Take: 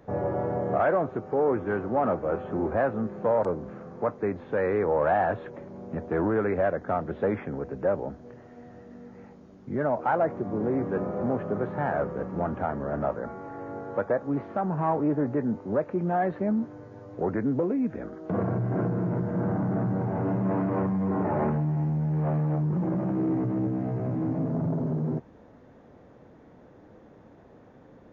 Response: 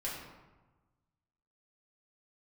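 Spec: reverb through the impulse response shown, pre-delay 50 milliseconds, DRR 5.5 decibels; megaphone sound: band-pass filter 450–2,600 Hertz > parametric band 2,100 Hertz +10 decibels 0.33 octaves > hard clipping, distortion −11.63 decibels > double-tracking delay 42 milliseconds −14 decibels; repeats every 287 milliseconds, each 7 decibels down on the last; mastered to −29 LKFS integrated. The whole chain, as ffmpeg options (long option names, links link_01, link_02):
-filter_complex "[0:a]aecho=1:1:287|574|861|1148|1435:0.447|0.201|0.0905|0.0407|0.0183,asplit=2[link_01][link_02];[1:a]atrim=start_sample=2205,adelay=50[link_03];[link_02][link_03]afir=irnorm=-1:irlink=0,volume=-8dB[link_04];[link_01][link_04]amix=inputs=2:normalize=0,highpass=450,lowpass=2600,equalizer=frequency=2100:width_type=o:width=0.33:gain=10,asoftclip=type=hard:threshold=-24dB,asplit=2[link_05][link_06];[link_06]adelay=42,volume=-14dB[link_07];[link_05][link_07]amix=inputs=2:normalize=0,volume=2dB"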